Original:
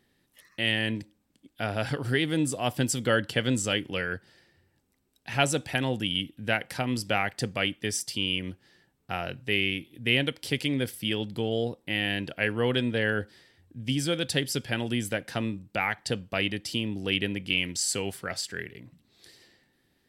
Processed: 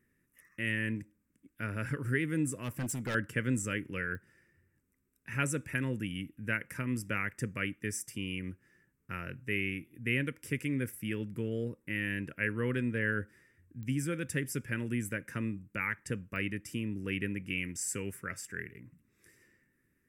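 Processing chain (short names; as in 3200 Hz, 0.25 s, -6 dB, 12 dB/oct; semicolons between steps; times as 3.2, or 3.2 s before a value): bell 3200 Hz -14.5 dB 0.29 oct; fixed phaser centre 1800 Hz, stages 4; 2.55–3.15 hard clip -28.5 dBFS, distortion -19 dB; pops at 4.15/13.83/16.36, -29 dBFS; gain -3 dB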